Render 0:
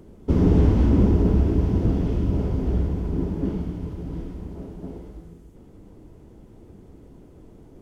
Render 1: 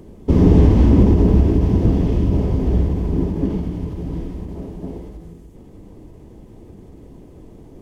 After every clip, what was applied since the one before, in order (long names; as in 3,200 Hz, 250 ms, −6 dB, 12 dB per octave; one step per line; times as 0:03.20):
notch filter 1,400 Hz, Q 5.8
every ending faded ahead of time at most 110 dB per second
level +6 dB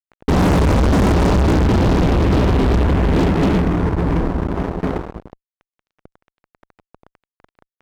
low-pass that shuts in the quiet parts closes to 920 Hz, open at −9.5 dBFS
transistor ladder low-pass 1,200 Hz, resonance 50%
fuzz pedal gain 37 dB, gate −41 dBFS
level +1 dB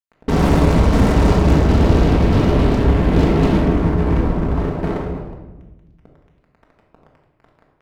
rectangular room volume 650 cubic metres, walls mixed, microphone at 1.6 metres
level −4 dB